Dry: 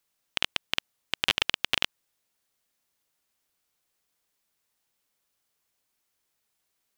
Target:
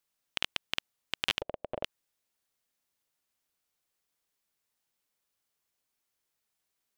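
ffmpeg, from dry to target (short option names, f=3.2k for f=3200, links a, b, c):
-filter_complex "[0:a]asplit=3[a][b][c];[a]afade=t=out:st=1.4:d=0.02[d];[b]lowpass=f=600:t=q:w=4.9,afade=t=in:st=1.4:d=0.02,afade=t=out:st=1.83:d=0.02[e];[c]afade=t=in:st=1.83:d=0.02[f];[d][e][f]amix=inputs=3:normalize=0,volume=-5dB"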